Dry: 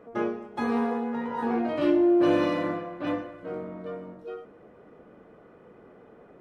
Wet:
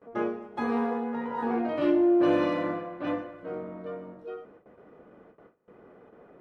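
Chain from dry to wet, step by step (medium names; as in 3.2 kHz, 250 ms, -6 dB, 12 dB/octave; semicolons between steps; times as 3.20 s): bass shelf 220 Hz -4 dB; gate with hold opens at -44 dBFS; treble shelf 4.2 kHz -9 dB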